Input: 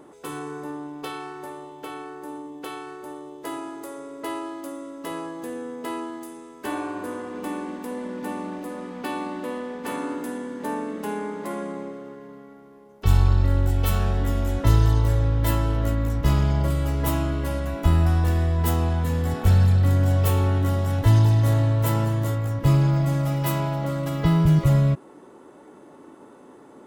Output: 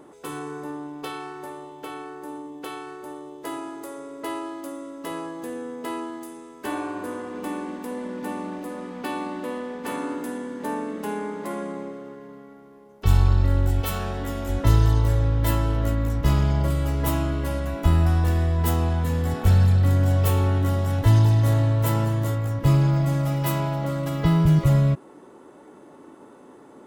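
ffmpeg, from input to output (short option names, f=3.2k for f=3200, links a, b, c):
-filter_complex "[0:a]asettb=1/sr,asplit=3[a][b][c];[a]atrim=end=13.814[d];[b]atrim=start=13.81:end=14.49,asetpts=PTS-STARTPTS,afade=t=in:d=0.004:c=qsin,afade=t=out:st=0.676:d=0.004:c=qsin,lowshelf=f=120:g=-12[e];[c]atrim=start=14.486[f];[d][e]acrossfade=d=0.004:c1=hsin:c2=qsin[g];[g][f]acrossfade=d=0.004:c1=qsin:c2=hsin"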